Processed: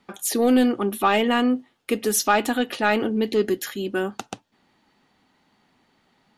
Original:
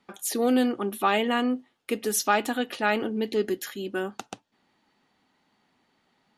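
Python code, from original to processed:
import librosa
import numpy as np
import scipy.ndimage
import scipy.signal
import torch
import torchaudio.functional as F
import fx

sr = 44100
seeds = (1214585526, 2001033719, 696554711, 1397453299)

p1 = 10.0 ** (-18.0 / 20.0) * np.tanh(x / 10.0 ** (-18.0 / 20.0))
p2 = x + F.gain(torch.from_numpy(p1), -3.0).numpy()
y = fx.low_shelf(p2, sr, hz=130.0, db=5.5)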